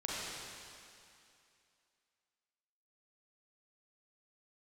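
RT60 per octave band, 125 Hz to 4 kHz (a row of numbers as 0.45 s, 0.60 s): 2.3 s, 2.5 s, 2.4 s, 2.6 s, 2.6 s, 2.5 s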